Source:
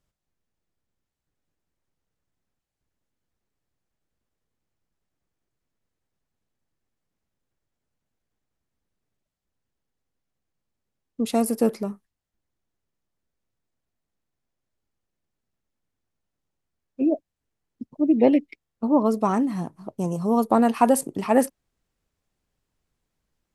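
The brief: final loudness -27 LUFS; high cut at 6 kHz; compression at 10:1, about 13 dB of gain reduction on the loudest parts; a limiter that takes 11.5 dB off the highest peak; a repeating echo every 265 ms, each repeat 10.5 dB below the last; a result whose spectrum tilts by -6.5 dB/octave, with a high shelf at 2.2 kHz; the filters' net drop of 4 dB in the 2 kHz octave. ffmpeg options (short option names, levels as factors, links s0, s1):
-af "lowpass=6000,equalizer=f=2000:t=o:g=-7,highshelf=f=2200:g=3.5,acompressor=threshold=0.0501:ratio=10,alimiter=level_in=1.26:limit=0.0631:level=0:latency=1,volume=0.794,aecho=1:1:265|530|795:0.299|0.0896|0.0269,volume=2.82"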